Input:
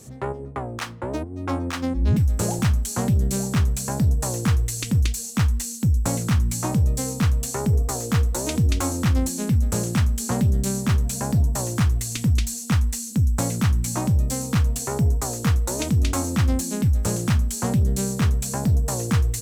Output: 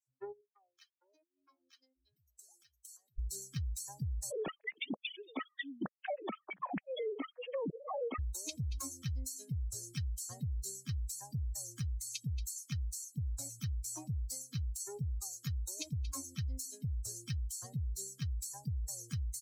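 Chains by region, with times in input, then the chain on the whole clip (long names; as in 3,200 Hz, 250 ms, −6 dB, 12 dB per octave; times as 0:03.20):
0:00.41–0:03.19: high-pass filter 460 Hz 6 dB per octave + high-shelf EQ 9,100 Hz +2.5 dB + downward compressor 4 to 1, threshold −32 dBFS
0:04.31–0:08.19: three sine waves on the formant tracks + upward compression, threshold −21 dBFS
whole clip: spectral dynamics exaggerated over time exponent 3; brickwall limiter −25 dBFS; downward compressor 4 to 1, threshold −36 dBFS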